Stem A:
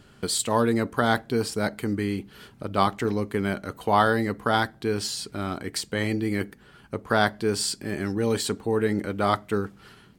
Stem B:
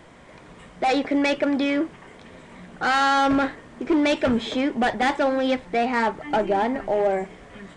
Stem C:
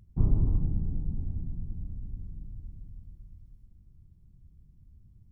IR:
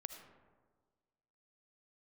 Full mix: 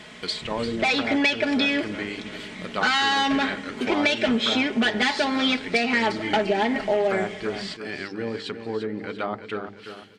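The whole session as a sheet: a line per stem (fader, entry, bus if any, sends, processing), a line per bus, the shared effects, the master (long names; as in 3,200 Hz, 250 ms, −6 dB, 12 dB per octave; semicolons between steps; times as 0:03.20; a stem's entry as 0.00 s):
−3.5 dB, 0.00 s, no send, echo send −10 dB, mains-hum notches 50/100/150/200/250/300/350/400/450 Hz; treble cut that deepens with the level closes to 730 Hz, closed at −19 dBFS
−2.5 dB, 0.00 s, send −8 dB, no echo send, low-shelf EQ 180 Hz +9.5 dB; comb filter 4.7 ms, depth 77%
−9.0 dB, 0.25 s, no send, no echo send, no processing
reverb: on, RT60 1.5 s, pre-delay 35 ms
echo: repeating echo 345 ms, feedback 46%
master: meter weighting curve D; downward compressor 10 to 1, threshold −18 dBFS, peak gain reduction 10 dB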